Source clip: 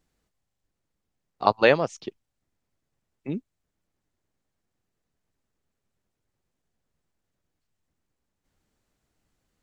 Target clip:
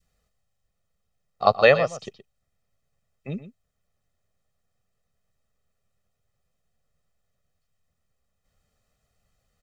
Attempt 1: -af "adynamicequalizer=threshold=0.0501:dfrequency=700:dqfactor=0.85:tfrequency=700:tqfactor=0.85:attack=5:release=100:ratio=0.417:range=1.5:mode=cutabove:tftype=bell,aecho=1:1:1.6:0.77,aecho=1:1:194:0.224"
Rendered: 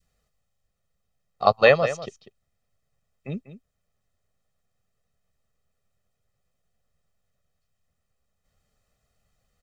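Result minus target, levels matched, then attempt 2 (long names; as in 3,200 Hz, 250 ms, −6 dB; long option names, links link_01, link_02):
echo 73 ms late
-af "adynamicequalizer=threshold=0.0501:dfrequency=700:dqfactor=0.85:tfrequency=700:tqfactor=0.85:attack=5:release=100:ratio=0.417:range=1.5:mode=cutabove:tftype=bell,aecho=1:1:1.6:0.77,aecho=1:1:121:0.224"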